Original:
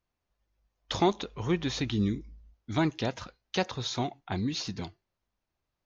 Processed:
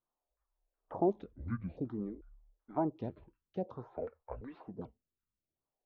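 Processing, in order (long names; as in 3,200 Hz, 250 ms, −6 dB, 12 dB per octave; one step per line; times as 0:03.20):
pitch shifter gated in a rhythm −7.5 semitones, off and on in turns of 441 ms
auto-filter low-pass saw down 2.7 Hz 510–1,500 Hz
phaser with staggered stages 0.53 Hz
level −7 dB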